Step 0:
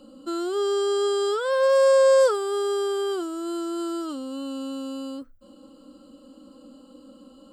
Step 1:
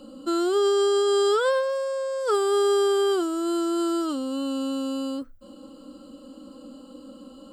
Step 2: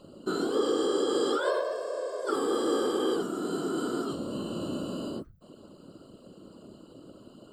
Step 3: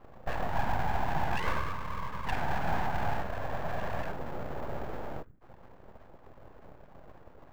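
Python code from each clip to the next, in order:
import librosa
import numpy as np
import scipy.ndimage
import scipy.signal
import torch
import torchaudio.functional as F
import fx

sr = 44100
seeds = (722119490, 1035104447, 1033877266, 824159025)

y1 = fx.over_compress(x, sr, threshold_db=-24.0, ratio=-1.0)
y1 = F.gain(torch.from_numpy(y1), 2.0).numpy()
y2 = fx.whisperise(y1, sr, seeds[0])
y2 = F.gain(torch.from_numpy(y2), -6.0).numpy()
y3 = (np.kron(y2[::6], np.eye(6)[0]) * 6)[:len(y2)]
y3 = scipy.signal.sosfilt(scipy.signal.cheby2(4, 40, 3500.0, 'lowpass', fs=sr, output='sos'), y3)
y3 = np.abs(y3)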